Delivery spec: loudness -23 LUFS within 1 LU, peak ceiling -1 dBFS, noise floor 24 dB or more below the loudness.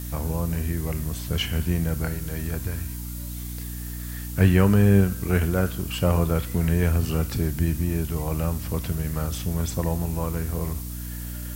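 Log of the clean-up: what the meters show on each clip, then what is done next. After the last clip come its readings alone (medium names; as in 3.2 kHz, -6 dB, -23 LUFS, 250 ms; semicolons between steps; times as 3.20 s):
hum 60 Hz; highest harmonic 300 Hz; hum level -32 dBFS; noise floor -33 dBFS; noise floor target -50 dBFS; loudness -25.5 LUFS; peak level -4.5 dBFS; loudness target -23.0 LUFS
-> de-hum 60 Hz, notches 5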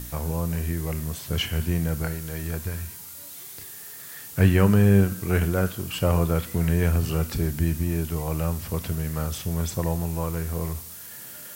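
hum not found; noise floor -41 dBFS; noise floor target -49 dBFS
-> noise print and reduce 8 dB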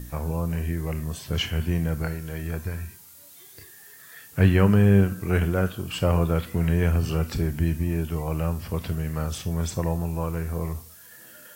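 noise floor -49 dBFS; noise floor target -50 dBFS
-> noise print and reduce 6 dB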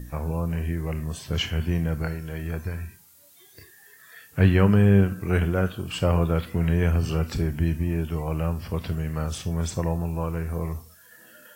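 noise floor -53 dBFS; loudness -25.5 LUFS; peak level -5.0 dBFS; loudness target -23.0 LUFS
-> trim +2.5 dB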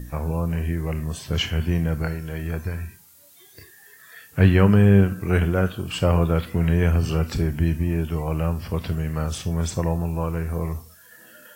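loudness -23.0 LUFS; peak level -2.5 dBFS; noise floor -51 dBFS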